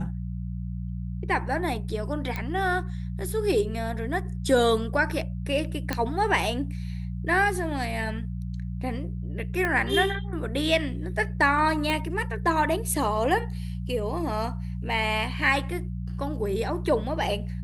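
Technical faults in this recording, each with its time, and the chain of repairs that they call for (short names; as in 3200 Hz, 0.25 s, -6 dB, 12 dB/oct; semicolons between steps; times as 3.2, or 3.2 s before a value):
hum 60 Hz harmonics 3 -32 dBFS
2.36 pop -17 dBFS
5.93 pop -11 dBFS
9.65 pop -15 dBFS
11.9 pop -14 dBFS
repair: de-click; de-hum 60 Hz, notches 3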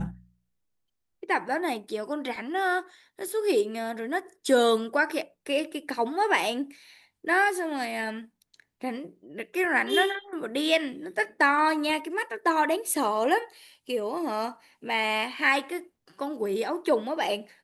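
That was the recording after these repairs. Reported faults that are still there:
9.65 pop
11.9 pop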